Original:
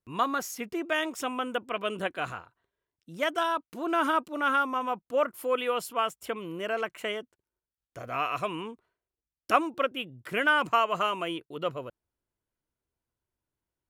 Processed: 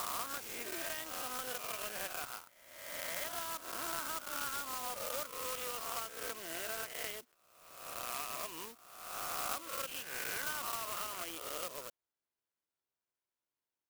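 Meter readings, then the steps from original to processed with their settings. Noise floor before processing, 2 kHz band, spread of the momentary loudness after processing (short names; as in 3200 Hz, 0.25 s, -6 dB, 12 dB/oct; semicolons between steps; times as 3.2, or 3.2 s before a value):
under -85 dBFS, -12.0 dB, 8 LU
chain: spectral swells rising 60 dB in 1.09 s; HPF 710 Hz 6 dB/oct; compressor 4:1, threshold -35 dBFS, peak gain reduction 16 dB; wow and flutter 18 cents; careless resampling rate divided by 3×, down filtered, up zero stuff; clock jitter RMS 0.033 ms; gain -6.5 dB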